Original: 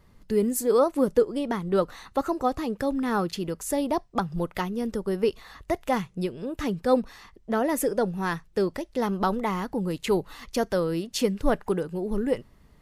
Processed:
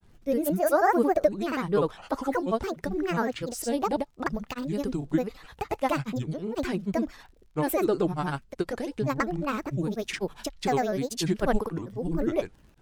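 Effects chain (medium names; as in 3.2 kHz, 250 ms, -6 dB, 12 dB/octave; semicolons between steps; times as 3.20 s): crackle 32 per s -48 dBFS; granulator, pitch spread up and down by 7 st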